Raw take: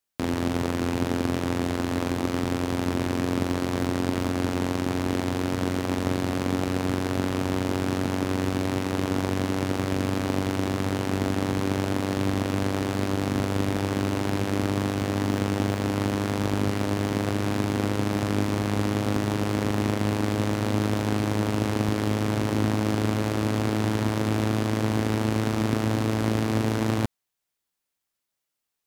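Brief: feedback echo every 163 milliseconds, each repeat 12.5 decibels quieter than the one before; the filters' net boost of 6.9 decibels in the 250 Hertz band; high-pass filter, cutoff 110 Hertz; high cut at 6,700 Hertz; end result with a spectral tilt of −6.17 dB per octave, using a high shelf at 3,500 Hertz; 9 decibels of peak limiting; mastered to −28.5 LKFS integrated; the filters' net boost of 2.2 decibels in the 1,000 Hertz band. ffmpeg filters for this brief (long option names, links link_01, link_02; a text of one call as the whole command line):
ffmpeg -i in.wav -af "highpass=110,lowpass=6700,equalizer=frequency=250:width_type=o:gain=8.5,equalizer=frequency=1000:width_type=o:gain=3,highshelf=frequency=3500:gain=-8.5,alimiter=limit=-16.5dB:level=0:latency=1,aecho=1:1:163|326|489:0.237|0.0569|0.0137,volume=-3.5dB" out.wav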